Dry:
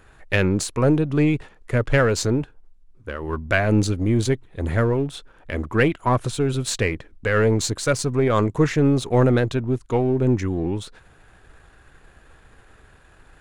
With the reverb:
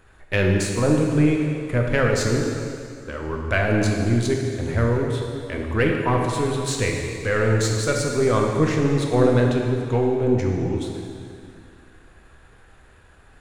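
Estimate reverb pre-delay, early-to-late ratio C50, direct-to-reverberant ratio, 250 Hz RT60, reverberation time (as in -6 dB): 5 ms, 2.0 dB, 0.0 dB, 2.4 s, 2.3 s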